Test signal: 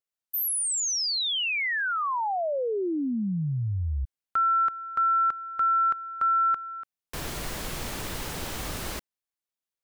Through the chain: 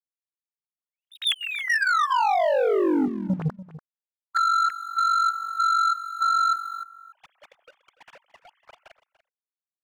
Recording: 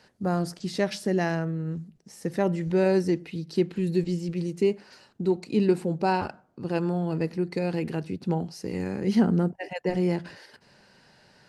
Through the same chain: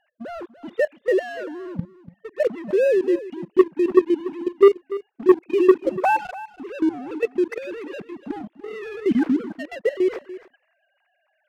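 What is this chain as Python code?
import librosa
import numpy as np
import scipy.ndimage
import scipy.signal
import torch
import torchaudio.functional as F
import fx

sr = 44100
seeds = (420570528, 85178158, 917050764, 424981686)

p1 = fx.sine_speech(x, sr)
p2 = fx.dynamic_eq(p1, sr, hz=1700.0, q=1.5, threshold_db=-35.0, ratio=3.0, max_db=6)
p3 = fx.level_steps(p2, sr, step_db=14)
p4 = fx.leveller(p3, sr, passes=2)
p5 = p4 + fx.echo_single(p4, sr, ms=290, db=-16.0, dry=0)
y = F.gain(torch.from_numpy(p5), 3.5).numpy()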